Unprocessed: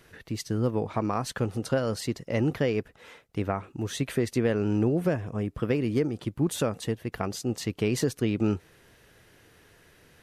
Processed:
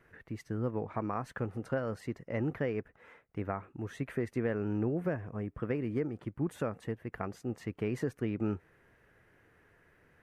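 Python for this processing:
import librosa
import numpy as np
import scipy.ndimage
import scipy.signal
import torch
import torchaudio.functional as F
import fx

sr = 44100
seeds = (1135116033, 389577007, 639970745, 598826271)

y = fx.high_shelf_res(x, sr, hz=2700.0, db=-11.5, q=1.5)
y = y * 10.0 ** (-7.5 / 20.0)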